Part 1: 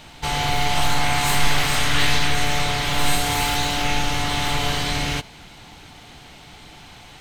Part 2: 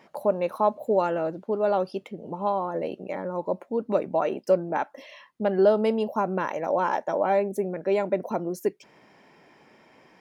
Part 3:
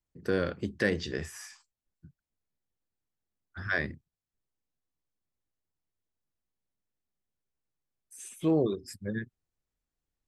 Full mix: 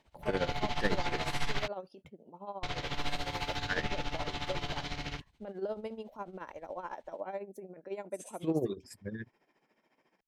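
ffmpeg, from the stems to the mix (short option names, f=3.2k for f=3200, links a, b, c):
-filter_complex "[0:a]afwtdn=0.0355,volume=-11.5dB,asplit=3[a][b][c];[a]atrim=end=1.68,asetpts=PTS-STARTPTS,afade=t=out:st=1.676:d=0.004:c=hsin[d];[b]atrim=start=1.68:end=2.63,asetpts=PTS-STARTPTS,volume=0[e];[c]atrim=start=2.63,asetpts=PTS-STARTPTS,afade=t=in:d=0.004:c=hsin[f];[d][e][f]concat=n=3:v=0:a=1[g];[1:a]highpass=160,volume=-13.5dB[h];[2:a]agate=range=-10dB:threshold=-52dB:ratio=16:detection=peak,volume=-2.5dB[i];[g][h][i]amix=inputs=3:normalize=0,tremolo=f=14:d=0.74"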